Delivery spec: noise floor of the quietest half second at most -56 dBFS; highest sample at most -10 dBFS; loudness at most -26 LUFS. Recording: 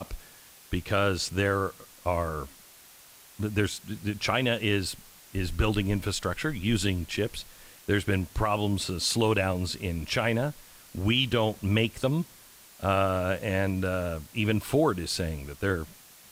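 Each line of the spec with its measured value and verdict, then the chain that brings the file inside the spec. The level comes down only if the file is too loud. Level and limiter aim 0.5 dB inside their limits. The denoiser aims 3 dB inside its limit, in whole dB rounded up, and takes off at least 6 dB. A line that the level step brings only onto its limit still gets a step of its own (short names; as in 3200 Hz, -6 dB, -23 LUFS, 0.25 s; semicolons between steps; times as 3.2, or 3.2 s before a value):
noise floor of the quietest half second -53 dBFS: fail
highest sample -12.5 dBFS: OK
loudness -28.5 LUFS: OK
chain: denoiser 6 dB, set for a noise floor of -53 dBFS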